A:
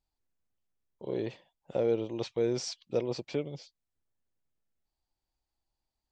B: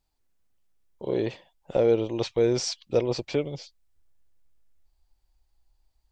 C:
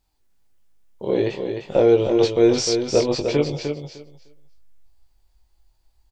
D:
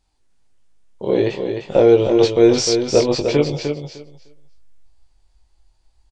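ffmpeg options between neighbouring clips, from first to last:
ffmpeg -i in.wav -af "asubboost=boost=6:cutoff=71,volume=7.5dB" out.wav
ffmpeg -i in.wav -filter_complex "[0:a]asplit=2[link_01][link_02];[link_02]adelay=20,volume=-4dB[link_03];[link_01][link_03]amix=inputs=2:normalize=0,asplit=2[link_04][link_05];[link_05]aecho=0:1:303|606|909:0.473|0.0804|0.0137[link_06];[link_04][link_06]amix=inputs=2:normalize=0,volume=5dB" out.wav
ffmpeg -i in.wav -af "aresample=22050,aresample=44100,volume=3.5dB" out.wav

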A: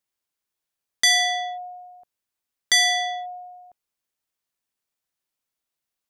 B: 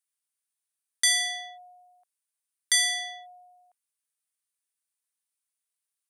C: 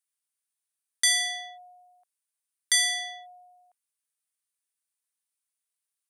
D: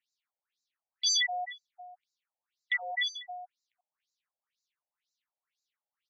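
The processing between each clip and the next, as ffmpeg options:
ffmpeg -i in.wav -af "highpass=1100,equalizer=frequency=9400:width_type=o:width=0.47:gain=14,volume=-6.5dB" out.wav
ffmpeg -i in.wav -af anull out.wav
ffmpeg -i in.wav -filter_complex "[0:a]aecho=1:1:90:0.075,asplit=2[link_01][link_02];[link_02]highpass=frequency=720:poles=1,volume=21dB,asoftclip=type=tanh:threshold=-10.5dB[link_03];[link_01][link_03]amix=inputs=2:normalize=0,lowpass=frequency=3900:poles=1,volume=-6dB,afftfilt=real='re*between(b*sr/1024,620*pow(5400/620,0.5+0.5*sin(2*PI*2*pts/sr))/1.41,620*pow(5400/620,0.5+0.5*sin(2*PI*2*pts/sr))*1.41)':imag='im*between(b*sr/1024,620*pow(5400/620,0.5+0.5*sin(2*PI*2*pts/sr))/1.41,620*pow(5400/620,0.5+0.5*sin(2*PI*2*pts/sr))*1.41)':win_size=1024:overlap=0.75,volume=-2.5dB" out.wav

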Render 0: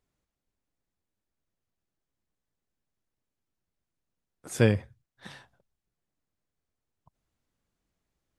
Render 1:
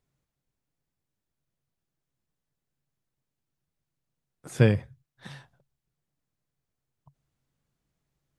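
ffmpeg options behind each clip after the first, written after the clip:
ffmpeg -i in.wav -filter_complex "[0:a]equalizer=frequency=140:width_type=o:width=0.33:gain=12,acrossover=split=4300[link_01][link_02];[link_02]alimiter=level_in=12dB:limit=-24dB:level=0:latency=1:release=188,volume=-12dB[link_03];[link_01][link_03]amix=inputs=2:normalize=0" out.wav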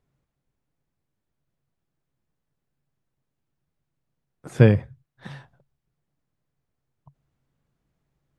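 ffmpeg -i in.wav -af "highshelf=frequency=3200:gain=-11,volume=5.5dB" out.wav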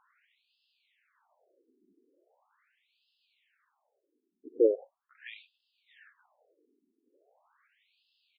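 ffmpeg -i in.wav -af "areverse,acompressor=mode=upward:threshold=-33dB:ratio=2.5,areverse,aecho=1:1:654:0.355,afftfilt=real='re*between(b*sr/1024,300*pow(3700/300,0.5+0.5*sin(2*PI*0.4*pts/sr))/1.41,300*pow(3700/300,0.5+0.5*sin(2*PI*0.4*pts/sr))*1.41)':imag='im*between(b*sr/1024,300*pow(3700/300,0.5+0.5*sin(2*PI*0.4*pts/sr))/1.41,300*pow(3700/300,0.5+0.5*sin(2*PI*0.4*pts/sr))*1.41)':win_size=1024:overlap=0.75,volume=-2.5dB" out.wav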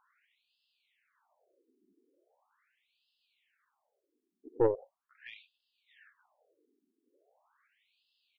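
ffmpeg -i in.wav -af "aeval=exprs='(tanh(6.31*val(0)+0.6)-tanh(0.6))/6.31':channel_layout=same" out.wav

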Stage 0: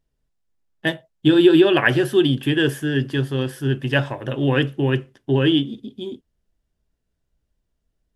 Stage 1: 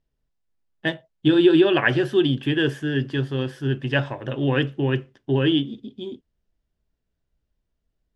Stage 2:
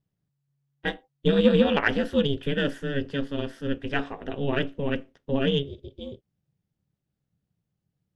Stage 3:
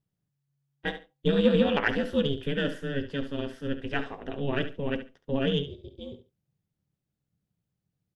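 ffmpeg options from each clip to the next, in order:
ffmpeg -i in.wav -af "lowpass=5800,volume=-2.5dB" out.wav
ffmpeg -i in.wav -af "aeval=exprs='0.501*(cos(1*acos(clip(val(0)/0.501,-1,1)))-cos(1*PI/2))+0.0282*(cos(3*acos(clip(val(0)/0.501,-1,1)))-cos(3*PI/2))':channel_layout=same,aeval=exprs='val(0)*sin(2*PI*140*n/s)':channel_layout=same" out.wav
ffmpeg -i in.wav -af "aecho=1:1:70|140:0.266|0.0479,volume=-3dB" out.wav

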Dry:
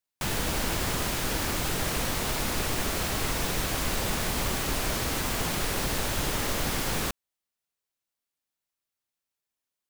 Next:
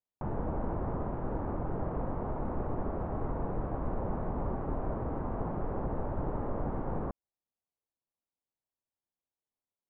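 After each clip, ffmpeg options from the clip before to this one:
ffmpeg -i in.wav -af "lowpass=frequency=1000:width=0.5412,lowpass=frequency=1000:width=1.3066,volume=-2.5dB" out.wav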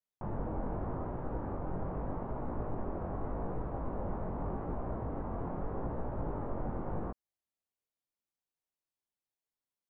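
ffmpeg -i in.wav -af "flanger=delay=16.5:depth=6.2:speed=0.83" out.wav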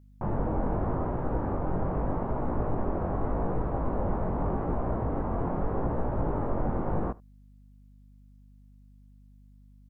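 ffmpeg -i in.wav -af "aeval=exprs='val(0)+0.000891*(sin(2*PI*50*n/s)+sin(2*PI*2*50*n/s)/2+sin(2*PI*3*50*n/s)/3+sin(2*PI*4*50*n/s)/4+sin(2*PI*5*50*n/s)/5)':channel_layout=same,aecho=1:1:75:0.0668,volume=8dB" out.wav

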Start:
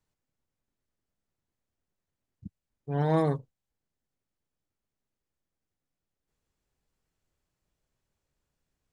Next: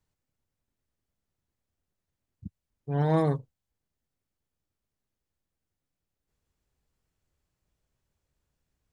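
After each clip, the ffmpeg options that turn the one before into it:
ffmpeg -i in.wav -af "equalizer=frequency=68:width=0.78:gain=5.5" out.wav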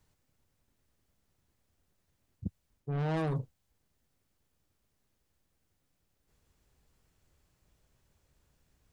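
ffmpeg -i in.wav -af "asoftclip=type=tanh:threshold=-28dB,areverse,acompressor=threshold=-39dB:ratio=12,areverse,volume=8.5dB" out.wav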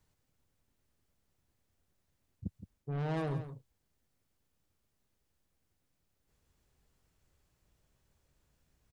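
ffmpeg -i in.wav -af "aecho=1:1:168:0.266,volume=-3dB" out.wav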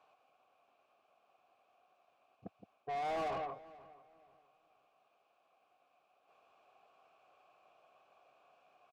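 ffmpeg -i in.wav -filter_complex "[0:a]asplit=3[link_01][link_02][link_03];[link_01]bandpass=frequency=730:width_type=q:width=8,volume=0dB[link_04];[link_02]bandpass=frequency=1090:width_type=q:width=8,volume=-6dB[link_05];[link_03]bandpass=frequency=2440:width_type=q:width=8,volume=-9dB[link_06];[link_04][link_05][link_06]amix=inputs=3:normalize=0,asplit=2[link_07][link_08];[link_08]highpass=frequency=720:poles=1,volume=28dB,asoftclip=type=tanh:threshold=-37.5dB[link_09];[link_07][link_09]amix=inputs=2:normalize=0,lowpass=frequency=2100:poles=1,volume=-6dB,asplit=2[link_10][link_11];[link_11]adelay=485,lowpass=frequency=2500:poles=1,volume=-19dB,asplit=2[link_12][link_13];[link_13]adelay=485,lowpass=frequency=2500:poles=1,volume=0.3,asplit=2[link_14][link_15];[link_15]adelay=485,lowpass=frequency=2500:poles=1,volume=0.3[link_16];[link_10][link_12][link_14][link_16]amix=inputs=4:normalize=0,volume=6.5dB" out.wav

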